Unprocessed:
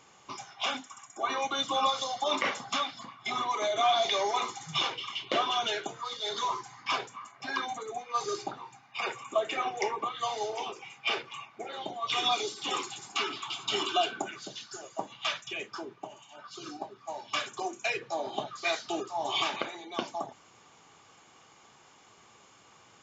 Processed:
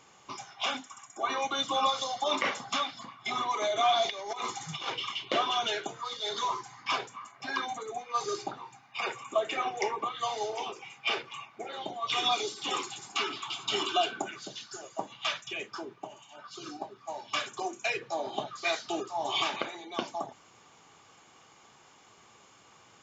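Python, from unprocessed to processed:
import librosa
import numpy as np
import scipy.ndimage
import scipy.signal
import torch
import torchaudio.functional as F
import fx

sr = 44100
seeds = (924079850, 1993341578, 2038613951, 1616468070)

y = fx.over_compress(x, sr, threshold_db=-33.0, ratio=-0.5, at=(4.09, 5.12), fade=0.02)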